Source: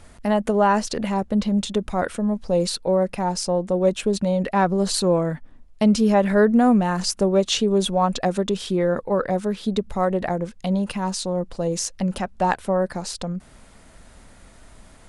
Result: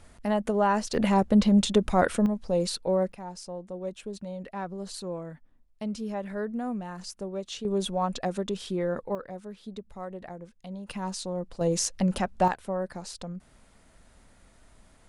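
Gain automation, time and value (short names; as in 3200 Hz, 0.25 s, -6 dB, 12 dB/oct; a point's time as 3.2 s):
-6 dB
from 0.94 s +1 dB
from 2.26 s -5.5 dB
from 3.12 s -16 dB
from 7.65 s -8 dB
from 9.15 s -17 dB
from 10.89 s -8 dB
from 11.61 s -1.5 dB
from 12.48 s -9.5 dB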